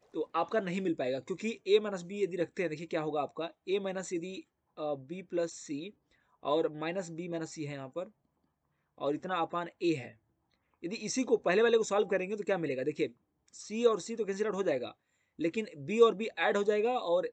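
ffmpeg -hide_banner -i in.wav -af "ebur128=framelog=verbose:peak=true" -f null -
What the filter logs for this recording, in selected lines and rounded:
Integrated loudness:
  I:         -32.9 LUFS
  Threshold: -43.3 LUFS
Loudness range:
  LRA:         6.8 LU
  Threshold: -54.1 LUFS
  LRA low:   -37.9 LUFS
  LRA high:  -31.1 LUFS
True peak:
  Peak:      -11.6 dBFS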